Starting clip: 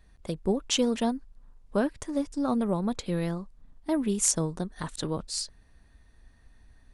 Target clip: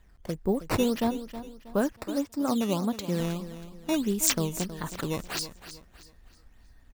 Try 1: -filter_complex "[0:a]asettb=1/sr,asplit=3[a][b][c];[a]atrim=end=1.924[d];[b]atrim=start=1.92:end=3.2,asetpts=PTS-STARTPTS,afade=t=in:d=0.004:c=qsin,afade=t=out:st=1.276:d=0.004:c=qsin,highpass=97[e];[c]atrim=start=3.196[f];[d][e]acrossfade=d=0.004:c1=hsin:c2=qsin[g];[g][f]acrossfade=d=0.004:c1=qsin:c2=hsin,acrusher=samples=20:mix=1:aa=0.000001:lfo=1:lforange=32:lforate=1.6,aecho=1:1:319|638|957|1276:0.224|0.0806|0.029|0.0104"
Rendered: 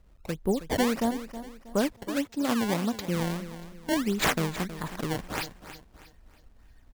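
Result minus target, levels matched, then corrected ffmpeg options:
decimation with a swept rate: distortion +5 dB
-filter_complex "[0:a]asettb=1/sr,asplit=3[a][b][c];[a]atrim=end=1.924[d];[b]atrim=start=1.92:end=3.2,asetpts=PTS-STARTPTS,afade=t=in:d=0.004:c=qsin,afade=t=out:st=1.276:d=0.004:c=qsin,highpass=97[e];[c]atrim=start=3.196[f];[d][e]acrossfade=d=0.004:c1=hsin:c2=qsin[g];[g][f]acrossfade=d=0.004:c1=qsin:c2=hsin,acrusher=samples=8:mix=1:aa=0.000001:lfo=1:lforange=12.8:lforate=1.6,aecho=1:1:319|638|957|1276:0.224|0.0806|0.029|0.0104"

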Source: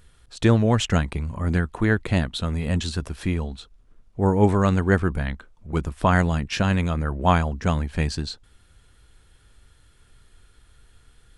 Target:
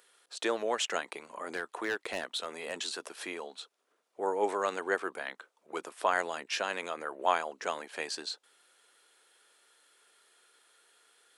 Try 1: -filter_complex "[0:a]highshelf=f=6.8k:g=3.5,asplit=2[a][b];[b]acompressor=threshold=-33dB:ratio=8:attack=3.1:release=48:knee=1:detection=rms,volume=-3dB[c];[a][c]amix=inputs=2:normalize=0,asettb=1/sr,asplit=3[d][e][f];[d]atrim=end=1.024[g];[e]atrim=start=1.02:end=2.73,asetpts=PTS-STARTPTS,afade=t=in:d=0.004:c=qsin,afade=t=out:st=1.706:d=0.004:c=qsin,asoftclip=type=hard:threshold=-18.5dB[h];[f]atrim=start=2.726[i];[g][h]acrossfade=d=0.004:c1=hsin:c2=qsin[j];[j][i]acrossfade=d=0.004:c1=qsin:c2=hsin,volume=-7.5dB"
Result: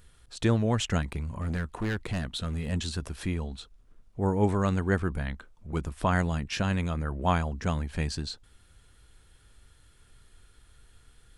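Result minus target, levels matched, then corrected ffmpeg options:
500 Hz band -3.5 dB
-filter_complex "[0:a]highpass=f=410:w=0.5412,highpass=f=410:w=1.3066,highshelf=f=6.8k:g=3.5,asplit=2[a][b];[b]acompressor=threshold=-33dB:ratio=8:attack=3.1:release=48:knee=1:detection=rms,volume=-3dB[c];[a][c]amix=inputs=2:normalize=0,asettb=1/sr,asplit=3[d][e][f];[d]atrim=end=1.024[g];[e]atrim=start=1.02:end=2.73,asetpts=PTS-STARTPTS,afade=t=in:d=0.004:c=qsin,afade=t=out:st=1.706:d=0.004:c=qsin,asoftclip=type=hard:threshold=-18.5dB[h];[f]atrim=start=2.726[i];[g][h]acrossfade=d=0.004:c1=hsin:c2=qsin[j];[j][i]acrossfade=d=0.004:c1=qsin:c2=hsin,volume=-7.5dB"

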